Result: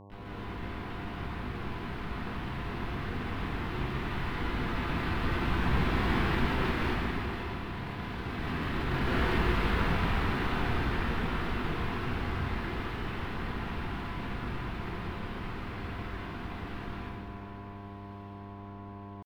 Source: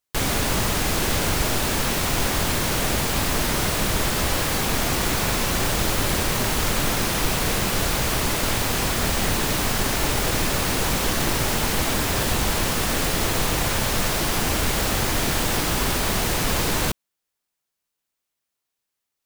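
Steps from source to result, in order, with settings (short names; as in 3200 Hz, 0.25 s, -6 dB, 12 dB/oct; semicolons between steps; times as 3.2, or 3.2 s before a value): Doppler pass-by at 7.65, 21 m/s, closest 13 m; bell 350 Hz -11.5 dB 0.48 oct; notches 60/120/180/240/300 Hz; negative-ratio compressor -31 dBFS, ratio -0.5; echo with dull and thin repeats by turns 0.633 s, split 1600 Hz, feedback 74%, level -11 dB; pitch shift +9 st; air absorption 450 m; buzz 100 Hz, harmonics 11, -51 dBFS -4 dB/oct; plate-style reverb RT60 1.9 s, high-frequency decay 0.95×, pre-delay 0.105 s, DRR -6 dB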